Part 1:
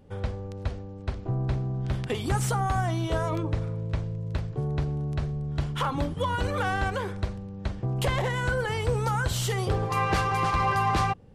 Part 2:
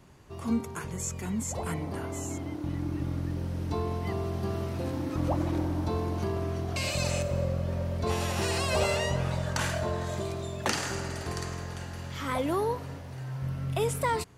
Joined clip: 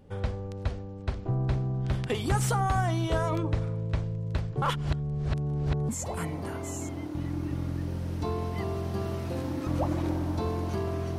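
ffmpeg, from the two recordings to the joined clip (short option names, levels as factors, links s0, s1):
-filter_complex "[0:a]apad=whole_dur=11.18,atrim=end=11.18,asplit=2[s0][s1];[s0]atrim=end=4.622[s2];[s1]atrim=start=4.618:end=5.892,asetpts=PTS-STARTPTS,areverse[s3];[1:a]atrim=start=1.378:end=6.67[s4];[s2][s3]acrossfade=d=0.004:c1=hsin:c2=hsin[s5];[s5][s4]acrossfade=d=0.004:c1=hsin:c2=hsin"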